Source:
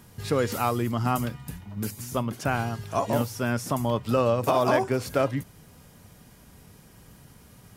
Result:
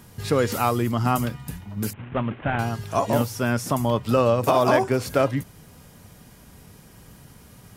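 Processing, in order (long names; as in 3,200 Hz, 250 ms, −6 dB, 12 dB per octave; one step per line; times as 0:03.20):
0:01.93–0:02.59: variable-slope delta modulation 16 kbit/s
level +3.5 dB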